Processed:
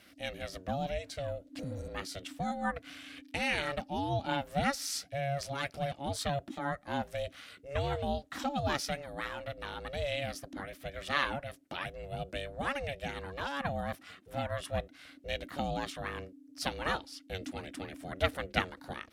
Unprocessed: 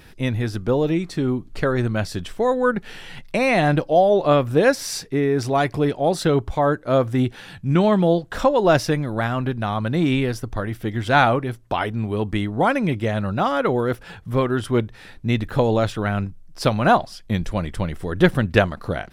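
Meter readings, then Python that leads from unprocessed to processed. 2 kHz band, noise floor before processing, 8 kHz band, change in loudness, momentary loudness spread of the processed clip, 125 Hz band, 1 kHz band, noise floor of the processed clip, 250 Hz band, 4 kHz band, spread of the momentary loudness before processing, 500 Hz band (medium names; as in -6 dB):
-11.0 dB, -44 dBFS, -8.0 dB, -15.5 dB, 10 LU, -17.5 dB, -13.5 dB, -59 dBFS, -19.0 dB, -7.5 dB, 10 LU, -17.5 dB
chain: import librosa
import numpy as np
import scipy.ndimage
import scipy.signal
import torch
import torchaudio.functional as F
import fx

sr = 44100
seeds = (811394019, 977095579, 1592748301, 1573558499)

y = fx.low_shelf(x, sr, hz=460.0, db=-7.0)
y = fx.fixed_phaser(y, sr, hz=310.0, stages=4)
y = y * np.sin(2.0 * np.pi * 280.0 * np.arange(len(y)) / sr)
y = fx.spec_repair(y, sr, seeds[0], start_s=1.62, length_s=0.24, low_hz=490.0, high_hz=5500.0, source='after')
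y = scipy.signal.sosfilt(scipy.signal.butter(2, 54.0, 'highpass', fs=sr, output='sos'), y)
y = y * librosa.db_to_amplitude(-4.5)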